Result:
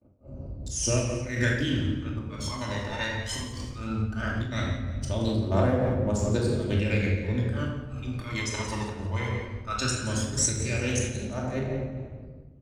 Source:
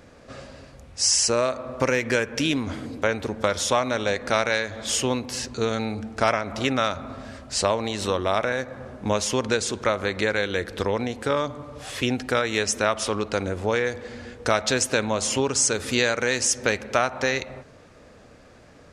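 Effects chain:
adaptive Wiener filter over 25 samples
noise gate −47 dBFS, range −50 dB
high-pass filter 44 Hz 12 dB per octave
low-shelf EQ 100 Hz +7.5 dB
reversed playback
upward compression, threshold −44 dBFS
reversed playback
tempo change 1.5×
phase shifter 0.17 Hz, delay 1.1 ms, feedback 76%
volume swells 134 ms
repeating echo 174 ms, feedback 33%, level −12 dB
rectangular room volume 1,100 cubic metres, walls mixed, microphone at 2.6 metres
amplitude modulation by smooth noise, depth 60%
level −7 dB

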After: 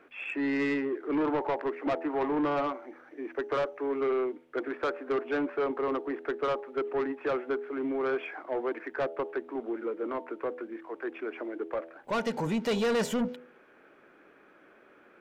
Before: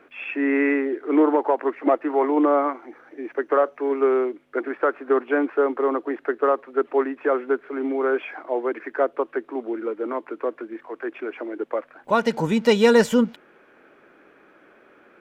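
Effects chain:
hum removal 82.58 Hz, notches 11
soft clipping −19.5 dBFS, distortion −9 dB
level −4.5 dB

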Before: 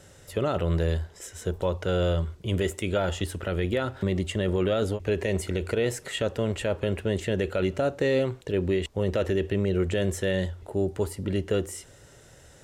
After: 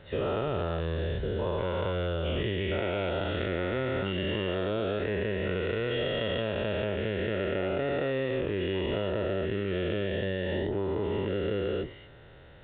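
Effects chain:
every bin's largest magnitude spread in time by 480 ms
downward compressor, threshold −21 dBFS, peak gain reduction 7 dB
downsampling to 8,000 Hz
level −5 dB

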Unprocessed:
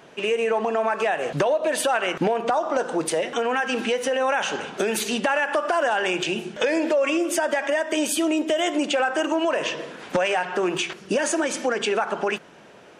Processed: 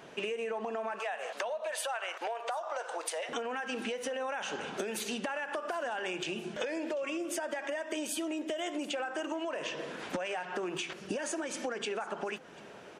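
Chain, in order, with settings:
0:00.99–0:03.29: high-pass filter 580 Hz 24 dB per octave
downward compressor 6 to 1, threshold −31 dBFS, peak gain reduction 13 dB
single-tap delay 741 ms −22.5 dB
level −2.5 dB

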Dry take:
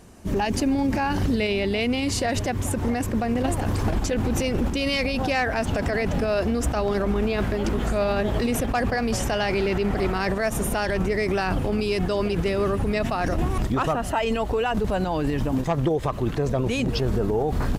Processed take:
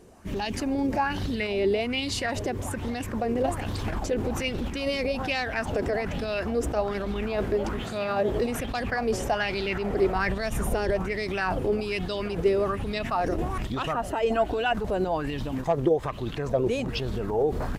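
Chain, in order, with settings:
0:07.83–0:08.29: high-pass filter 88 Hz 24 dB per octave
0:10.15–0:10.93: low-shelf EQ 120 Hz +10 dB
0:14.30–0:14.73: hollow resonant body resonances 320/680/1,500 Hz, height 13 dB
auto-filter bell 1.2 Hz 380–4,000 Hz +12 dB
level −7 dB

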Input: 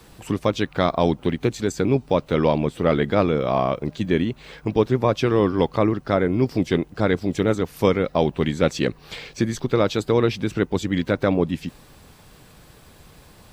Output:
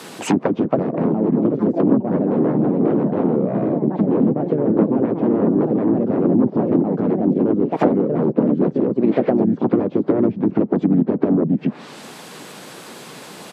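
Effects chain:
delay with pitch and tempo change per echo 368 ms, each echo +4 semitones, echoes 3, each echo −6 dB
harmonic generator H 2 −28 dB, 6 −10 dB, 7 −6 dB, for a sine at −3 dBFS
treble cut that deepens with the level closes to 320 Hz, closed at −14 dBFS
pitch-shifted copies added −3 semitones −4 dB
high-pass filter 190 Hz 24 dB per octave
level +5 dB

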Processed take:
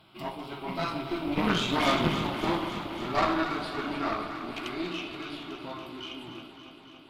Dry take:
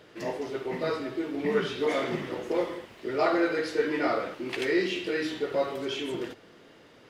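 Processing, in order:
source passing by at 0:01.89, 22 m/s, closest 19 metres
phaser with its sweep stopped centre 1,800 Hz, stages 6
harmonic generator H 4 −12 dB, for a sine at −22.5 dBFS
delay that swaps between a low-pass and a high-pass 141 ms, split 830 Hz, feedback 87%, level −9 dB
level +8.5 dB

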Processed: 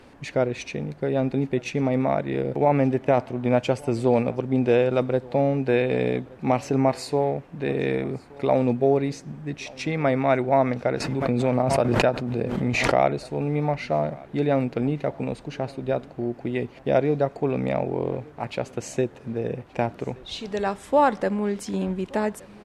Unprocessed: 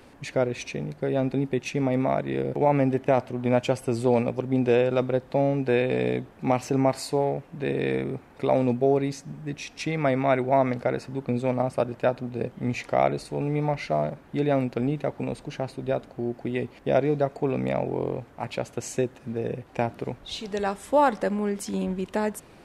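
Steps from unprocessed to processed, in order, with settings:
high-shelf EQ 9,700 Hz −10.5 dB
single-tap delay 1,175 ms −23.5 dB
0:11.00–0:13.08: background raised ahead of every attack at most 25 dB per second
level +1.5 dB

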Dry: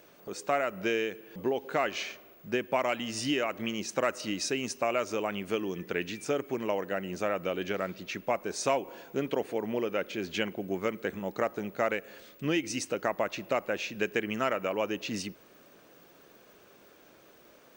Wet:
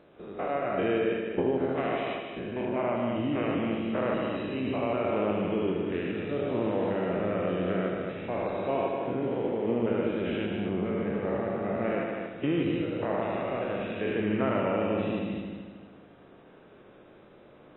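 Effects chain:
spectrum averaged block by block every 200 ms
tilt shelving filter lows +5.5 dB, about 1,100 Hz
0:01.05–0:01.60: transient designer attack +6 dB, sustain −10 dB
0:02.65–0:03.36: high-frequency loss of the air 370 metres
0:06.15–0:06.92: noise that follows the level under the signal 20 dB
echo machine with several playback heads 76 ms, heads all three, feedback 48%, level −8 dB
AAC 16 kbit/s 24,000 Hz

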